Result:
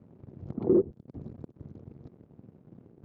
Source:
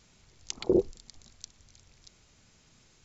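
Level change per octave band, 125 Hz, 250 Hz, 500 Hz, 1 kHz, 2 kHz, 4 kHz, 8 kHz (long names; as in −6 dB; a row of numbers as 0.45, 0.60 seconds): +5.5 dB, +3.0 dB, +1.0 dB, −0.5 dB, below −10 dB, below −30 dB, can't be measured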